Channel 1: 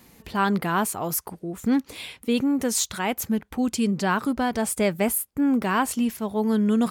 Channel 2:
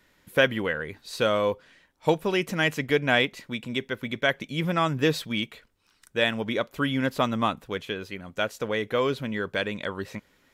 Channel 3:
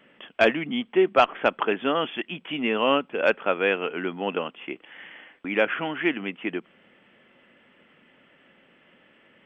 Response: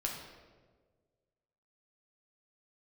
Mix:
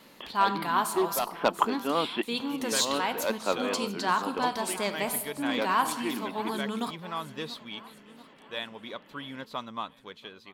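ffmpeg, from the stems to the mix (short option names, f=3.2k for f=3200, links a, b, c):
-filter_complex "[0:a]lowshelf=f=450:g=-7.5,volume=-10.5dB,asplit=4[a][b][c][d];[b]volume=-4.5dB[e];[c]volume=-12dB[f];[1:a]adelay=2350,volume=-15.5dB,asplit=2[g][h];[h]volume=-23.5dB[i];[2:a]tiltshelf=f=680:g=5.5,aeval=exprs='0.299*(abs(mod(val(0)/0.299+3,4)-2)-1)':c=same,volume=-0.5dB[j];[d]apad=whole_len=416909[k];[j][k]sidechaincompress=threshold=-48dB:ratio=5:attack=6.2:release=260[l];[3:a]atrim=start_sample=2205[m];[e][m]afir=irnorm=-1:irlink=0[n];[f][i]amix=inputs=2:normalize=0,aecho=0:1:686|1372|2058|2744|3430|4116|4802|5488:1|0.53|0.281|0.149|0.0789|0.0418|0.0222|0.0117[o];[a][g][l][n][o]amix=inputs=5:normalize=0,equalizer=f=100:t=o:w=0.67:g=-7,equalizer=f=1k:t=o:w=0.67:g=9,equalizer=f=4k:t=o:w=0.67:g=11"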